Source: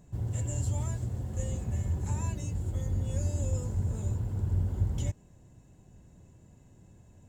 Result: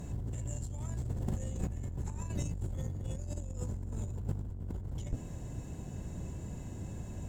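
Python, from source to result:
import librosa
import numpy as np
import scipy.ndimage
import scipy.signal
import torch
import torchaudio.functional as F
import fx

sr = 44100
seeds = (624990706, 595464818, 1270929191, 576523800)

y = fx.octave_divider(x, sr, octaves=1, level_db=-3.0)
y = fx.tube_stage(y, sr, drive_db=23.0, bias=0.4)
y = fx.over_compress(y, sr, threshold_db=-42.0, ratio=-1.0)
y = y * 10.0 ** (5.0 / 20.0)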